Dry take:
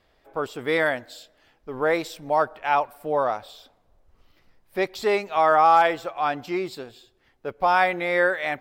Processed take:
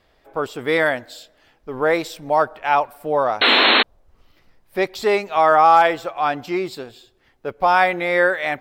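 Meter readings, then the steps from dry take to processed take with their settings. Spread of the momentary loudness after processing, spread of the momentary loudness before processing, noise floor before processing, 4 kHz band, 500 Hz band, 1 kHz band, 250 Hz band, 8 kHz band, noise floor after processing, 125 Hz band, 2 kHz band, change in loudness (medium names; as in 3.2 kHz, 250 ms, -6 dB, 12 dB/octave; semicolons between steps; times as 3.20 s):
16 LU, 16 LU, -64 dBFS, +16.0 dB, +4.0 dB, +4.5 dB, +5.0 dB, no reading, -60 dBFS, +4.0 dB, +6.0 dB, +5.0 dB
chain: painted sound noise, 3.41–3.83 s, 210–4300 Hz -18 dBFS; trim +4 dB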